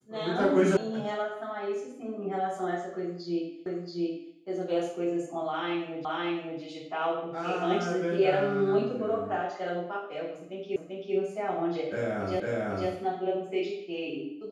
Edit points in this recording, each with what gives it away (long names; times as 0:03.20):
0:00.77: cut off before it has died away
0:03.66: the same again, the last 0.68 s
0:06.05: the same again, the last 0.56 s
0:10.76: the same again, the last 0.39 s
0:12.40: the same again, the last 0.5 s